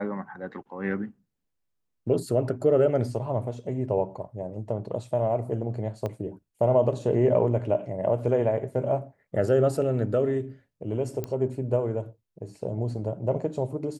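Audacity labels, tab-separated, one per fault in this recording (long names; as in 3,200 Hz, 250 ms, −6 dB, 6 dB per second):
6.060000	6.060000	click −19 dBFS
11.240000	11.240000	click −18 dBFS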